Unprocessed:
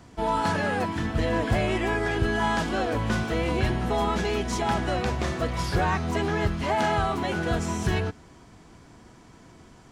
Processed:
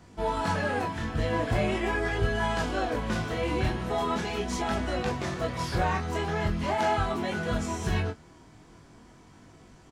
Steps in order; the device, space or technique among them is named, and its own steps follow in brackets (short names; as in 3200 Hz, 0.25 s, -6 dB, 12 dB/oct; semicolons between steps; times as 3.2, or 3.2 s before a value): double-tracked vocal (doubler 20 ms -11 dB; chorus 0.41 Hz, delay 19.5 ms, depth 7.1 ms)